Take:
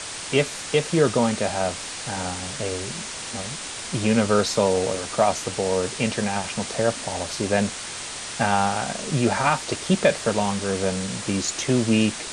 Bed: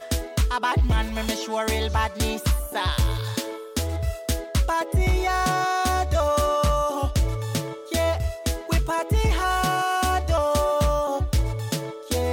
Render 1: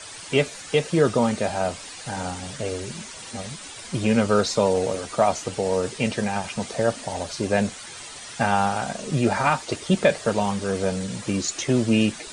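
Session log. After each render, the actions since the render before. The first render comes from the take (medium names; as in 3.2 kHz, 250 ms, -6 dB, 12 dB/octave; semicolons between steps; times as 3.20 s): noise reduction 10 dB, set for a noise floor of -34 dBFS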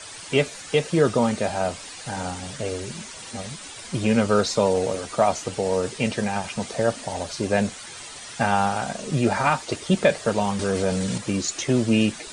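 10.59–11.18 s: level flattener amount 50%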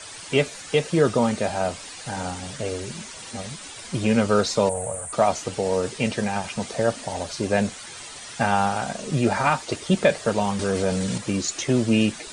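4.69–5.13 s: FFT filter 130 Hz 0 dB, 330 Hz -21 dB, 610 Hz -1 dB, 1.9 kHz -8 dB, 5.2 kHz -24 dB, 8.3 kHz +11 dB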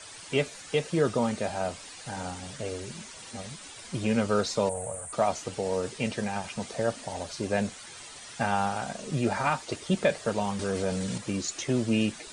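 trim -6 dB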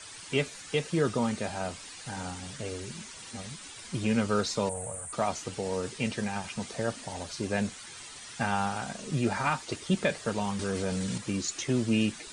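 peaking EQ 610 Hz -5.5 dB 0.87 oct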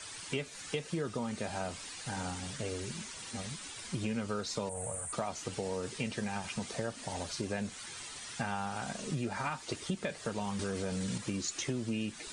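compression, threshold -32 dBFS, peak gain reduction 11 dB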